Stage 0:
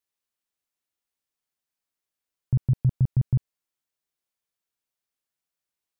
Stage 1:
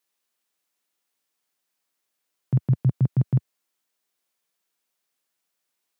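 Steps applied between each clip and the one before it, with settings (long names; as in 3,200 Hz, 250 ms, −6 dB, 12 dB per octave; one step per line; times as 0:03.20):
Bessel high-pass filter 190 Hz, order 6
level +8.5 dB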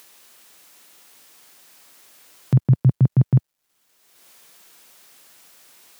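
in parallel at −1.5 dB: upward compression, threshold −26 dBFS
on the sum: bit reduction 11 bits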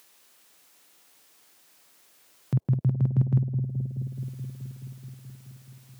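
bucket-brigade delay 213 ms, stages 1,024, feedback 78%, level −8 dB
level −8 dB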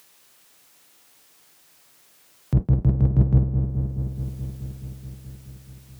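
sub-octave generator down 1 octave, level −2 dB
level +3 dB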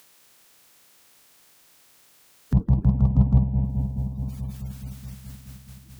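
spectral magnitudes quantised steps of 30 dB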